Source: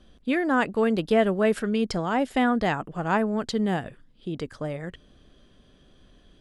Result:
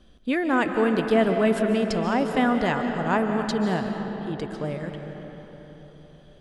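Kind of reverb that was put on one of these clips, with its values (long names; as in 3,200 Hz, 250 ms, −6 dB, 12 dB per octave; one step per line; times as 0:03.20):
comb and all-pass reverb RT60 4.3 s, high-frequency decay 0.55×, pre-delay 105 ms, DRR 4.5 dB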